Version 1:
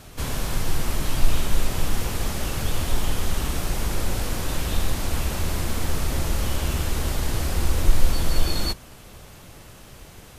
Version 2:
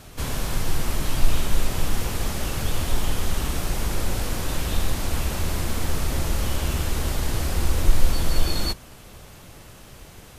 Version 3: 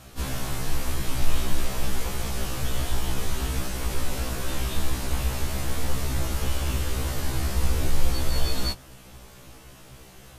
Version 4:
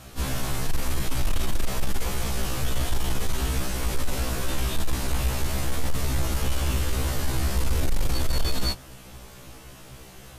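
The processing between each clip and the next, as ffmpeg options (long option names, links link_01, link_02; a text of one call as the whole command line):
ffmpeg -i in.wav -af anull out.wav
ffmpeg -i in.wav -af "afftfilt=real='re*1.73*eq(mod(b,3),0)':imag='im*1.73*eq(mod(b,3),0)':win_size=2048:overlap=0.75" out.wav
ffmpeg -i in.wav -af "aeval=exprs='0.447*sin(PI/2*2.24*val(0)/0.447)':channel_layout=same,volume=-8.5dB" out.wav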